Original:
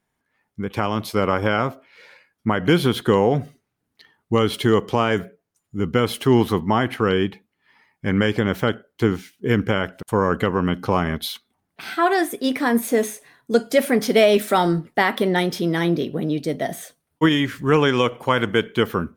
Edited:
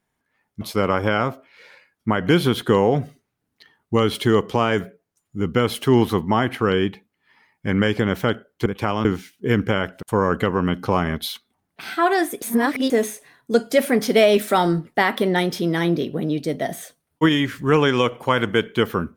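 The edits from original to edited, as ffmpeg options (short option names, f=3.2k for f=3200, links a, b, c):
-filter_complex "[0:a]asplit=6[a][b][c][d][e][f];[a]atrim=end=0.612[g];[b]atrim=start=0.998:end=9.052[h];[c]atrim=start=0.608:end=1.002[i];[d]atrim=start=9.048:end=12.422[j];[e]atrim=start=12.418:end=12.902,asetpts=PTS-STARTPTS,areverse[k];[f]atrim=start=12.898[l];[g][h]acrossfade=d=0.004:c1=hsin:c2=hsin[m];[m][i]acrossfade=d=0.004:c1=hsin:c2=hsin[n];[n][j]acrossfade=d=0.004:c1=hsin:c2=hsin[o];[o][k]acrossfade=d=0.004:c1=hsin:c2=hsin[p];[p][l]acrossfade=d=0.004:c1=hsin:c2=hsin"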